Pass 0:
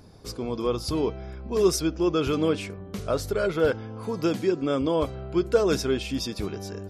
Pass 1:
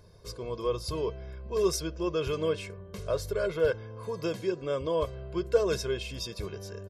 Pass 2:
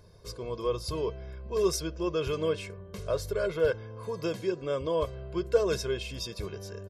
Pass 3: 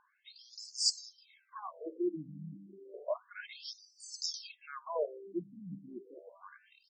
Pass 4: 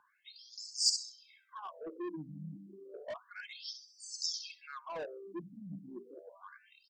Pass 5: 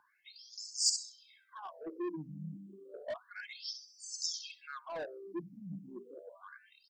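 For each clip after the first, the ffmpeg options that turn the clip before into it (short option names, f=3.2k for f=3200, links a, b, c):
-af "aecho=1:1:1.9:0.74,volume=-7dB"
-af anull
-af "aeval=exprs='(tanh(7.94*val(0)+0.2)-tanh(0.2))/7.94':c=same,aexciter=amount=5.5:drive=6.8:freq=4.7k,afftfilt=real='re*between(b*sr/1024,200*pow(6200/200,0.5+0.5*sin(2*PI*0.31*pts/sr))/1.41,200*pow(6200/200,0.5+0.5*sin(2*PI*0.31*pts/sr))*1.41)':imag='im*between(b*sr/1024,200*pow(6200/200,0.5+0.5*sin(2*PI*0.31*pts/sr))/1.41,200*pow(6200/200,0.5+0.5*sin(2*PI*0.31*pts/sr))*1.41)':win_size=1024:overlap=0.75"
-filter_complex "[0:a]bandreject=f=60:t=h:w=6,bandreject=f=120:t=h:w=6,bandreject=f=180:t=h:w=6,bandreject=f=240:t=h:w=6,acrossover=split=160|3700[a][b][c];[b]asoftclip=type=tanh:threshold=-38.5dB[d];[c]aecho=1:1:66|132|198:0.501|0.12|0.0289[e];[a][d][e]amix=inputs=3:normalize=0,volume=1dB"
-af "afftfilt=real='re*pow(10,6/40*sin(2*PI*(0.77*log(max(b,1)*sr/1024/100)/log(2)-(0.58)*(pts-256)/sr)))':imag='im*pow(10,6/40*sin(2*PI*(0.77*log(max(b,1)*sr/1024/100)/log(2)-(0.58)*(pts-256)/sr)))':win_size=1024:overlap=0.75"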